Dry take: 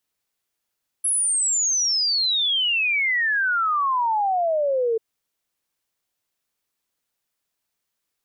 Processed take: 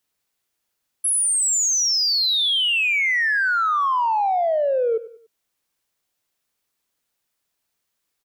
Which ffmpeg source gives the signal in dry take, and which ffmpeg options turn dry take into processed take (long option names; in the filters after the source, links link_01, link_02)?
-f lavfi -i "aevalsrc='0.119*clip(min(t,3.94-t)/0.01,0,1)*sin(2*PI*11000*3.94/log(440/11000)*(exp(log(440/11000)*t/3.94)-1))':duration=3.94:sample_rate=44100"
-filter_complex "[0:a]asplit=2[link_01][link_02];[link_02]asoftclip=type=tanh:threshold=-26.5dB,volume=-9dB[link_03];[link_01][link_03]amix=inputs=2:normalize=0,aecho=1:1:96|192|288:0.158|0.0618|0.0241"